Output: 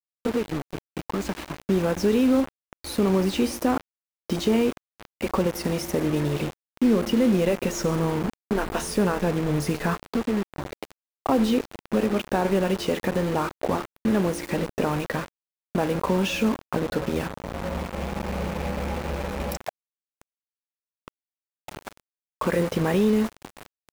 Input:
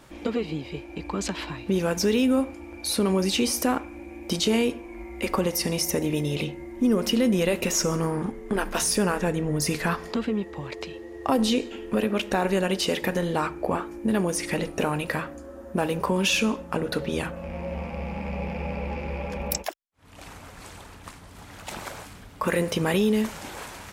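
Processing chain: bit-crush 5-bit; high shelf 2100 Hz -12 dB; gain +2 dB

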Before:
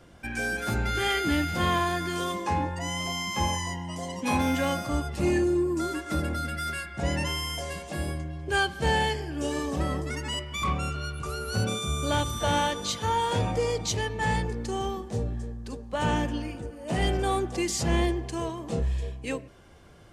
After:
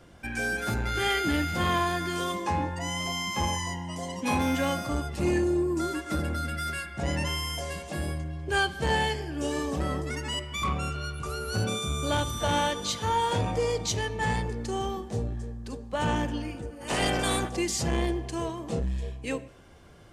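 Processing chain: 16.8–17.48 spectral limiter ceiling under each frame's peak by 20 dB; Schroeder reverb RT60 0.66 s, combs from 26 ms, DRR 18.5 dB; core saturation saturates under 230 Hz

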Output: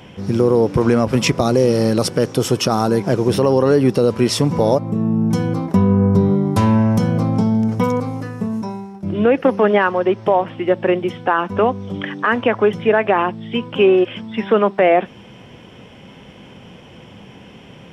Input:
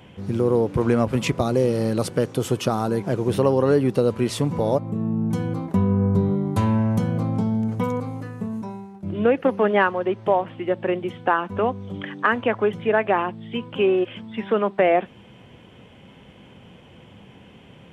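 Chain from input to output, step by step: bell 80 Hz -3.5 dB 1.1 oct; limiter -11.5 dBFS, peak gain reduction 8.5 dB; bell 5400 Hz +11 dB 0.21 oct; gain +7 dB

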